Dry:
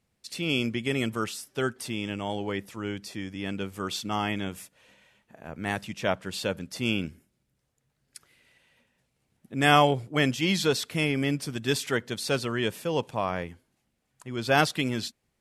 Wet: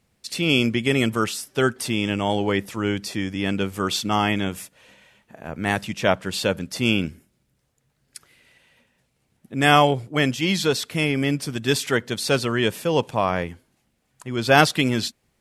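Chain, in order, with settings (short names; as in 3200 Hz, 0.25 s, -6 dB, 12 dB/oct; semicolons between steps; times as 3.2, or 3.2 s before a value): vocal rider within 4 dB 2 s; gain +5.5 dB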